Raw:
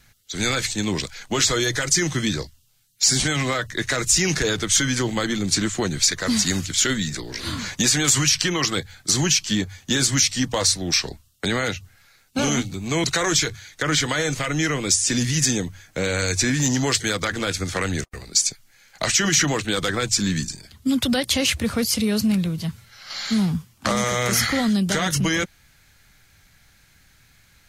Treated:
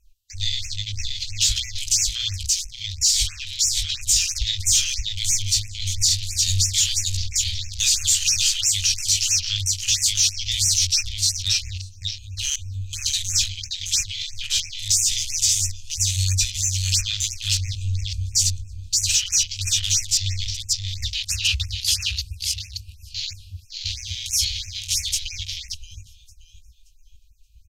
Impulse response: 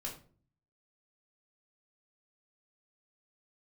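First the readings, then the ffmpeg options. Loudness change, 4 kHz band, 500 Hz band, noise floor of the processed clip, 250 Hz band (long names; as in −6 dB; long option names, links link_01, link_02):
+0.5 dB, +2.5 dB, below −40 dB, −48 dBFS, below −30 dB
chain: -filter_complex "[0:a]equalizer=frequency=10000:width_type=o:width=0.31:gain=-6.5,asplit=2[link_01][link_02];[link_02]adelay=19,volume=-7dB[link_03];[link_01][link_03]amix=inputs=2:normalize=0,asplit=2[link_04][link_05];[link_05]aecho=0:1:576|1152|1728|2304:0.668|0.214|0.0684|0.0219[link_06];[link_04][link_06]amix=inputs=2:normalize=0,afftfilt=real='re*(1-between(b*sr/4096,100,2400))':imag='im*(1-between(b*sr/4096,100,2400))':win_size=4096:overlap=0.75,bandreject=frequency=377.5:width_type=h:width=4,bandreject=frequency=755:width_type=h:width=4,bandreject=frequency=1132.5:width_type=h:width=4,bandreject=frequency=1510:width_type=h:width=4,bandreject=frequency=1887.5:width_type=h:width=4,bandreject=frequency=2265:width_type=h:width=4,bandreject=frequency=2642.5:width_type=h:width=4,bandreject=frequency=3020:width_type=h:width=4,bandreject=frequency=3397.5:width_type=h:width=4,bandreject=frequency=3775:width_type=h:width=4,bandreject=frequency=4152.5:width_type=h:width=4,bandreject=frequency=4530:width_type=h:width=4,bandreject=frequency=4907.5:width_type=h:width=4,bandreject=frequency=5285:width_type=h:width=4,bandreject=frequency=5662.5:width_type=h:width=4,bandreject=frequency=6040:width_type=h:width=4,bandreject=frequency=6417.5:width_type=h:width=4,apsyclip=14.5dB,lowshelf=frequency=74:gain=6.5,flanger=delay=0.6:depth=7.1:regen=-83:speed=0.66:shape=sinusoidal,afwtdn=0.0794,afftfilt=real='re*(1-between(b*sr/1024,420*pow(3900/420,0.5+0.5*sin(2*PI*3*pts/sr))/1.41,420*pow(3900/420,0.5+0.5*sin(2*PI*3*pts/sr))*1.41))':imag='im*(1-between(b*sr/1024,420*pow(3900/420,0.5+0.5*sin(2*PI*3*pts/sr))/1.41,420*pow(3900/420,0.5+0.5*sin(2*PI*3*pts/sr))*1.41))':win_size=1024:overlap=0.75,volume=-7dB"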